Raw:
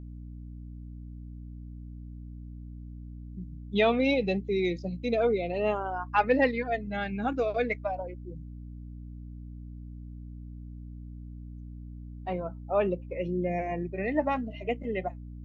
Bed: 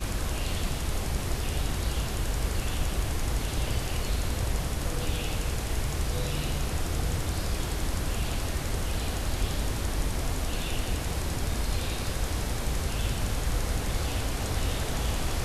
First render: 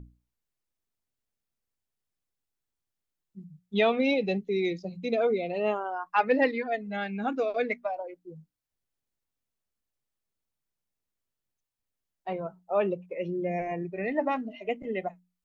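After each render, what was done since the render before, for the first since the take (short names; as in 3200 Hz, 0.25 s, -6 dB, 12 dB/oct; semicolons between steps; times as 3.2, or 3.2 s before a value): notches 60/120/180/240/300 Hz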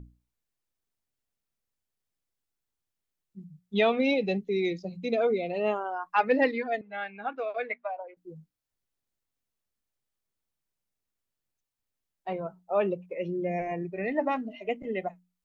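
6.81–8.17 three-band isolator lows -17 dB, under 530 Hz, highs -22 dB, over 3300 Hz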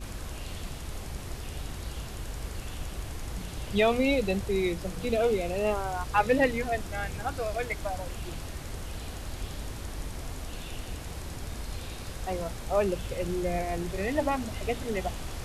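add bed -8 dB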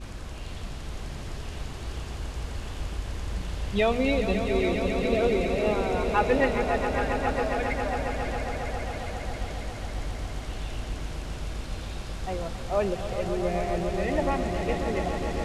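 air absorption 56 m; swelling echo 0.136 s, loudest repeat 5, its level -10 dB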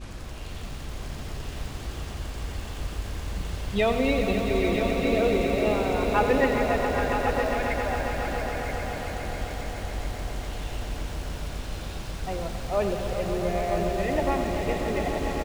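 echo 0.977 s -8 dB; lo-fi delay 93 ms, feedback 80%, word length 7-bit, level -10 dB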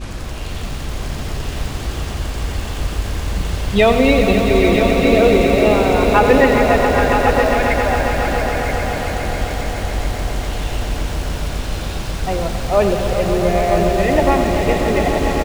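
gain +11 dB; limiter -1 dBFS, peak gain reduction 2 dB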